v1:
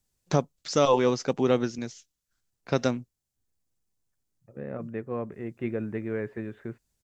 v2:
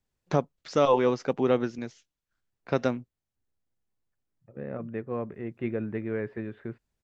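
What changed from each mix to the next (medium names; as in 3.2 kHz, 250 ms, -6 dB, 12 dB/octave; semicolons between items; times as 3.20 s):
first voice: add tone controls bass -3 dB, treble -13 dB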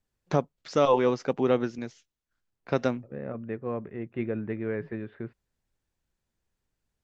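second voice: entry -1.45 s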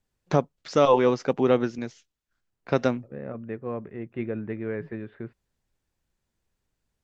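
first voice +3.0 dB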